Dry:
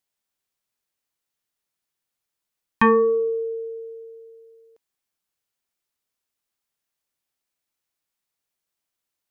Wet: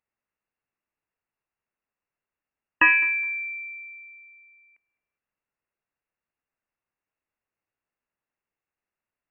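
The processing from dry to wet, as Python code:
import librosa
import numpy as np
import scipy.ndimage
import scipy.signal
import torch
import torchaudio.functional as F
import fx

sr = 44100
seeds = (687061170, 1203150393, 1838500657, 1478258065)

y = fx.peak_eq(x, sr, hz=380.0, db=-6.5, octaves=0.74)
y = fx.echo_feedback(y, sr, ms=208, feedback_pct=21, wet_db=-22.0)
y = fx.freq_invert(y, sr, carrier_hz=2800)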